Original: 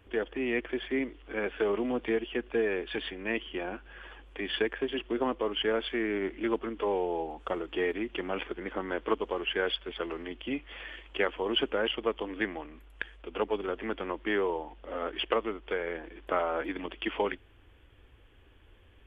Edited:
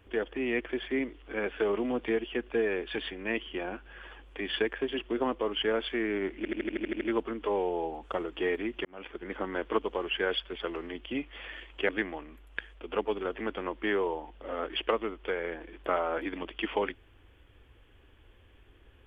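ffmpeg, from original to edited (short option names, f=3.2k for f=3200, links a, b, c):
-filter_complex "[0:a]asplit=11[a][b][c][d][e][f][g][h][i][j][k];[a]atrim=end=6.452[l];[b]atrim=start=6.368:end=6.452[m];[c]atrim=start=6.368:end=6.452[n];[d]atrim=start=6.368:end=6.452[o];[e]atrim=start=6.368:end=6.452[p];[f]atrim=start=6.368:end=6.452[q];[g]atrim=start=6.368:end=6.452[r];[h]atrim=start=6.368:end=6.452[s];[i]atrim=start=6.368:end=8.21,asetpts=PTS-STARTPTS,afade=t=out:st=1.838:d=0.004:c=hsin[t];[j]atrim=start=8.21:end=11.252,asetpts=PTS-STARTPTS,afade=t=in:d=0.49[u];[k]atrim=start=12.318[v];[l][m]acrossfade=d=0.004:c1=hsin:c2=hsin[w];[w][n]acrossfade=d=0.004:c1=hsin:c2=hsin[x];[x][o]acrossfade=d=0.004:c1=hsin:c2=hsin[y];[y][p]acrossfade=d=0.004:c1=hsin:c2=hsin[z];[z][q]acrossfade=d=0.004:c1=hsin:c2=hsin[aa];[aa][r]acrossfade=d=0.004:c1=hsin:c2=hsin[ab];[ab][s]acrossfade=d=0.004:c1=hsin:c2=hsin[ac];[t][u]concat=n=2:v=0:a=1[ad];[ac][ad]acrossfade=d=0.004:c1=hsin:c2=hsin[ae];[ae][v]acrossfade=d=0.004:c1=hsin:c2=hsin"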